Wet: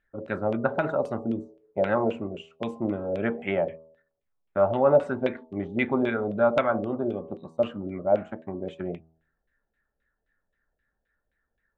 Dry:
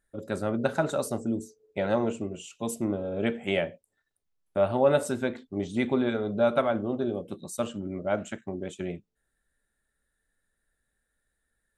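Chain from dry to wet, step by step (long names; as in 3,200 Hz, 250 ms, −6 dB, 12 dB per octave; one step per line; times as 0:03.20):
hum removal 80.61 Hz, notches 15
auto-filter low-pass saw down 3.8 Hz 560–2,900 Hz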